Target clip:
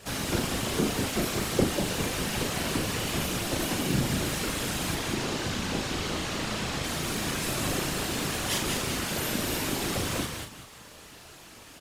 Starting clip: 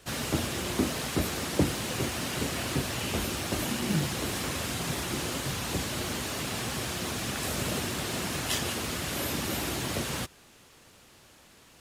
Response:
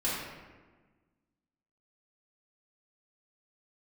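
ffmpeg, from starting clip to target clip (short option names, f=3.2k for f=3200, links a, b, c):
-filter_complex "[0:a]asettb=1/sr,asplit=3[a][b][c];[a]atrim=end=4.954[d];[b]atrim=start=4.95:end=6.84,asetpts=PTS-STARTPTS,afade=t=in:d=0.004:c=qsin,afade=t=out:st=1.886:d=0.004:c=qsin,acrossover=split=7400[e][f];[f]acompressor=threshold=-53dB:ratio=4:attack=1:release=60[g];[e][g]amix=inputs=2:normalize=0[h];[c]atrim=start=6.836[i];[d][h]acrossfade=d=0.004:c1=hsin:c2=qsin[j];[j][i]acrossfade=d=0.004:c1=qsin:c2=hsin,aecho=1:1:192|384|576:0.562|0.124|0.0272,afftfilt=real='hypot(re,im)*cos(2*PI*random(0))':imag='hypot(re,im)*sin(2*PI*random(1))':win_size=512:overlap=0.75,asplit=2[k][l];[l]acompressor=threshold=-53dB:ratio=6,volume=2dB[m];[k][m]amix=inputs=2:normalize=0,asplit=2[n][o];[o]adelay=38,volume=-6.5dB[p];[n][p]amix=inputs=2:normalize=0,volume=4.5dB"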